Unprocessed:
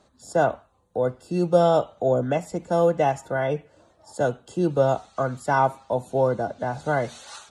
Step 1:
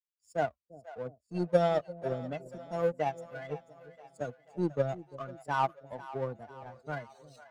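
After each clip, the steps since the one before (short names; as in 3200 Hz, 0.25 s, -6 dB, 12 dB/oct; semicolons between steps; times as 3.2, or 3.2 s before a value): per-bin expansion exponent 2; power-law curve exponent 1.4; split-band echo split 550 Hz, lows 0.346 s, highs 0.489 s, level -16 dB; gain -2.5 dB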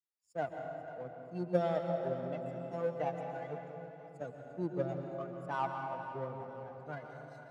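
HPF 62 Hz; high shelf 3800 Hz -7 dB; reverb RT60 3.2 s, pre-delay 0.114 s, DRR 3 dB; gain -6 dB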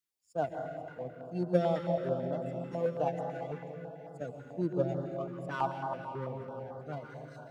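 stepped notch 9.1 Hz 670–2400 Hz; gain +5 dB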